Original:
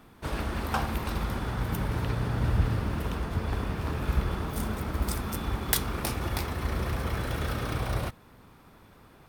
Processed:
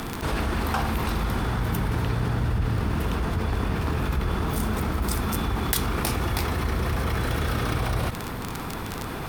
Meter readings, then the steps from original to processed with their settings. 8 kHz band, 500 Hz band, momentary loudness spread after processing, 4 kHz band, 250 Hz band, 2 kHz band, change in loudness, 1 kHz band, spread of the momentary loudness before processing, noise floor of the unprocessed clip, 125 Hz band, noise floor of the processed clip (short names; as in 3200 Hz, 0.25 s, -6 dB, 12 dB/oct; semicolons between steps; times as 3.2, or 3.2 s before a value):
+3.5 dB, +5.0 dB, 4 LU, +5.0 dB, +5.5 dB, +5.5 dB, +4.0 dB, +5.5 dB, 5 LU, -55 dBFS, +4.0 dB, -33 dBFS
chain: notch 570 Hz, Q 12; crackle 25/s -37 dBFS; fast leveller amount 70%; gain -2.5 dB